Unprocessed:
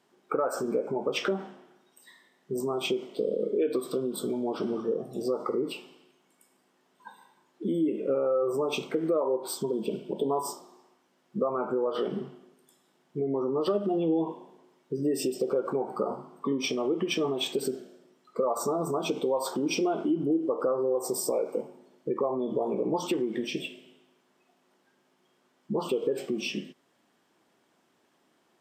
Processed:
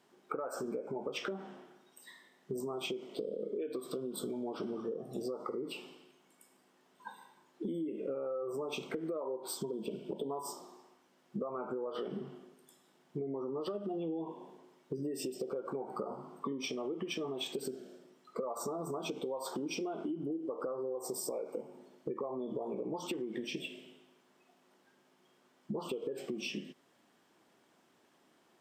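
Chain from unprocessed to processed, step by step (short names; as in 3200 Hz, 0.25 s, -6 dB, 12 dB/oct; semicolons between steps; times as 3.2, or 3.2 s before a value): compressor 5:1, threshold -36 dBFS, peak gain reduction 13 dB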